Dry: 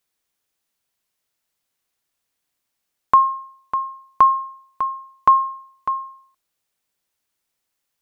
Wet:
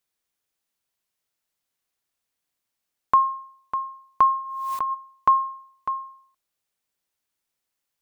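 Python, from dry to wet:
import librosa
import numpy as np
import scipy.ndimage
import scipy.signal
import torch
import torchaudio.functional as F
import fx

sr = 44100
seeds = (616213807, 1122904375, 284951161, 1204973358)

y = fx.pre_swell(x, sr, db_per_s=33.0, at=(4.37, 4.93), fade=0.02)
y = F.gain(torch.from_numpy(y), -4.5).numpy()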